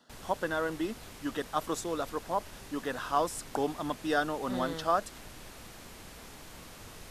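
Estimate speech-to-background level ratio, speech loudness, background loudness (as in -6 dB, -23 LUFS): 14.5 dB, -33.5 LUFS, -48.0 LUFS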